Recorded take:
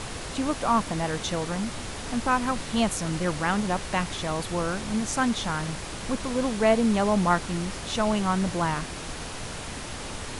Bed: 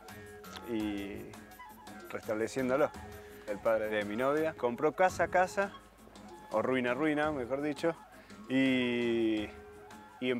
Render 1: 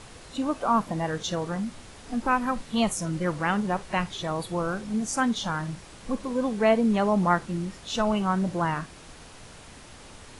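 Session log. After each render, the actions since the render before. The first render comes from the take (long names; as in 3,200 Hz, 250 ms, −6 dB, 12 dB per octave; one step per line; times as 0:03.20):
noise reduction from a noise print 11 dB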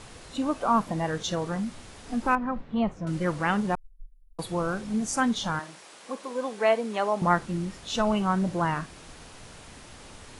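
0:02.35–0:03.07: head-to-tape spacing loss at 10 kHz 42 dB
0:03.75–0:04.39: inverse Chebyshev band-stop filter 200–5,600 Hz, stop band 80 dB
0:05.59–0:07.22: high-pass filter 440 Hz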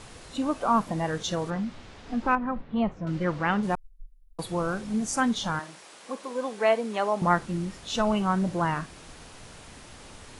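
0:01.50–0:03.63: low-pass filter 4,600 Hz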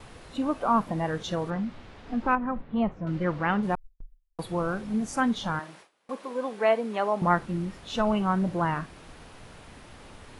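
parametric band 7,200 Hz −9 dB 1.6 octaves
noise gate with hold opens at −38 dBFS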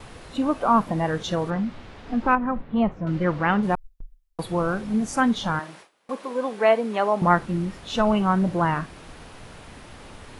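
level +4.5 dB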